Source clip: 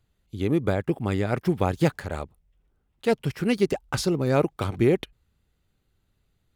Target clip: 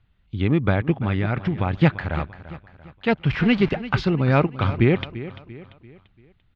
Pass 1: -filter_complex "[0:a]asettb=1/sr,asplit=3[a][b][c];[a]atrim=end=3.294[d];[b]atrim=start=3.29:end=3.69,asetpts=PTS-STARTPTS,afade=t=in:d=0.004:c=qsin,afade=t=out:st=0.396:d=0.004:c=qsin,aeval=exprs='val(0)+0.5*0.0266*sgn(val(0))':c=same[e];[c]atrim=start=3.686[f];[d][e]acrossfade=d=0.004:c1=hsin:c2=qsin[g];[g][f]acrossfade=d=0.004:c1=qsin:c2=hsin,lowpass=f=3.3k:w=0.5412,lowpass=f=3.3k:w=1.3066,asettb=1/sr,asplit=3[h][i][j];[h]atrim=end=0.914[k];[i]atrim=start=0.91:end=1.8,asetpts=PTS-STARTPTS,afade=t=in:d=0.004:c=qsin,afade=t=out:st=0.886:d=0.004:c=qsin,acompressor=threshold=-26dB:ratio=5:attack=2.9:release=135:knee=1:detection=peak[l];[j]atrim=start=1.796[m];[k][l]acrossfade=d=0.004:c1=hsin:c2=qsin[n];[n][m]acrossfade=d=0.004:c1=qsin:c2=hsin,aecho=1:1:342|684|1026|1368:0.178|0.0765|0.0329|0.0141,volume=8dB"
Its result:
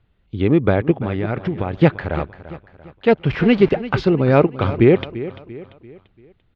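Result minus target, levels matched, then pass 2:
500 Hz band +4.0 dB
-filter_complex "[0:a]asettb=1/sr,asplit=3[a][b][c];[a]atrim=end=3.294[d];[b]atrim=start=3.29:end=3.69,asetpts=PTS-STARTPTS,afade=t=in:d=0.004:c=qsin,afade=t=out:st=0.396:d=0.004:c=qsin,aeval=exprs='val(0)+0.5*0.0266*sgn(val(0))':c=same[e];[c]atrim=start=3.686[f];[d][e]acrossfade=d=0.004:c1=hsin:c2=qsin[g];[g][f]acrossfade=d=0.004:c1=qsin:c2=hsin,lowpass=f=3.3k:w=0.5412,lowpass=f=3.3k:w=1.3066,equalizer=f=440:t=o:w=1.4:g=-9.5,asettb=1/sr,asplit=3[h][i][j];[h]atrim=end=0.914[k];[i]atrim=start=0.91:end=1.8,asetpts=PTS-STARTPTS,afade=t=in:d=0.004:c=qsin,afade=t=out:st=0.886:d=0.004:c=qsin,acompressor=threshold=-26dB:ratio=5:attack=2.9:release=135:knee=1:detection=peak[l];[j]atrim=start=1.796[m];[k][l]acrossfade=d=0.004:c1=hsin:c2=qsin[n];[n][m]acrossfade=d=0.004:c1=qsin:c2=hsin,aecho=1:1:342|684|1026|1368:0.178|0.0765|0.0329|0.0141,volume=8dB"

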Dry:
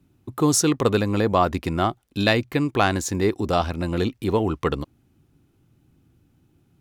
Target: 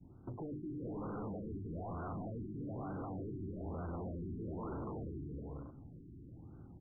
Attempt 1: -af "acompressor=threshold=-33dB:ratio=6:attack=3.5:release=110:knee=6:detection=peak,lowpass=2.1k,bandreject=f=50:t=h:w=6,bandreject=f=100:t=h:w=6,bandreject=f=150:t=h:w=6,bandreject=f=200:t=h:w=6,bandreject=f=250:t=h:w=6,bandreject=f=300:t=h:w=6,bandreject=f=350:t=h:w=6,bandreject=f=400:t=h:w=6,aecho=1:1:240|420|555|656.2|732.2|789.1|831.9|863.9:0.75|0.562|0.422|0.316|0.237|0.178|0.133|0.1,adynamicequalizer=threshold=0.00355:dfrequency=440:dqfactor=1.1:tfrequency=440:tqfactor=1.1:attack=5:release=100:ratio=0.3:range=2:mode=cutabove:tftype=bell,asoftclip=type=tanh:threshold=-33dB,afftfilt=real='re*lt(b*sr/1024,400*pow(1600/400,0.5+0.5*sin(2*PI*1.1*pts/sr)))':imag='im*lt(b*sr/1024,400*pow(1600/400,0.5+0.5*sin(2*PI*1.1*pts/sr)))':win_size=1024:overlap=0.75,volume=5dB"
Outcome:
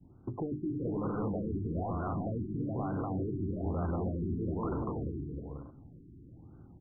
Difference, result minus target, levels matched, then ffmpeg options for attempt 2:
soft clip: distortion -8 dB
-af "acompressor=threshold=-33dB:ratio=6:attack=3.5:release=110:knee=6:detection=peak,lowpass=2.1k,bandreject=f=50:t=h:w=6,bandreject=f=100:t=h:w=6,bandreject=f=150:t=h:w=6,bandreject=f=200:t=h:w=6,bandreject=f=250:t=h:w=6,bandreject=f=300:t=h:w=6,bandreject=f=350:t=h:w=6,bandreject=f=400:t=h:w=6,aecho=1:1:240|420|555|656.2|732.2|789.1|831.9|863.9:0.75|0.562|0.422|0.316|0.237|0.178|0.133|0.1,adynamicequalizer=threshold=0.00355:dfrequency=440:dqfactor=1.1:tfrequency=440:tqfactor=1.1:attack=5:release=100:ratio=0.3:range=2:mode=cutabove:tftype=bell,asoftclip=type=tanh:threshold=-45dB,afftfilt=real='re*lt(b*sr/1024,400*pow(1600/400,0.5+0.5*sin(2*PI*1.1*pts/sr)))':imag='im*lt(b*sr/1024,400*pow(1600/400,0.5+0.5*sin(2*PI*1.1*pts/sr)))':win_size=1024:overlap=0.75,volume=5dB"

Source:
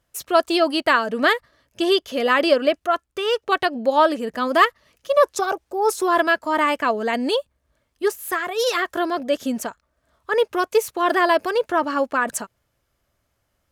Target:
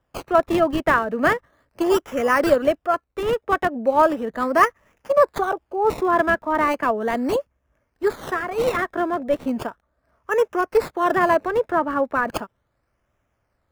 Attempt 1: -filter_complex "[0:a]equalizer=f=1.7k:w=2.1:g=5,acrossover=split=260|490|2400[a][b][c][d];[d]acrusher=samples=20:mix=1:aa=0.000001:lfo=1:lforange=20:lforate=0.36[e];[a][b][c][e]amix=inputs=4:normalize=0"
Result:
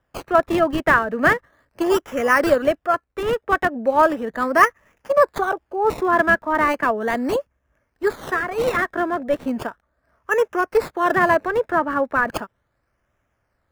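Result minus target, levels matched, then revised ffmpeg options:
2000 Hz band +3.0 dB
-filter_complex "[0:a]acrossover=split=260|490|2400[a][b][c][d];[d]acrusher=samples=20:mix=1:aa=0.000001:lfo=1:lforange=20:lforate=0.36[e];[a][b][c][e]amix=inputs=4:normalize=0"

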